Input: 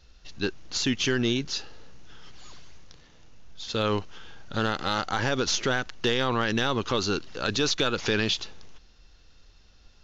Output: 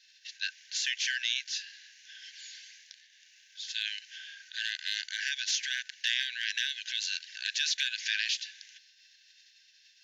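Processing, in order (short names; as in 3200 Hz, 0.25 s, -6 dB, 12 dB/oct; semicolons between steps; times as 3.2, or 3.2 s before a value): spectral limiter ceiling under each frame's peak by 14 dB; brick-wall FIR high-pass 1500 Hz; gain -4 dB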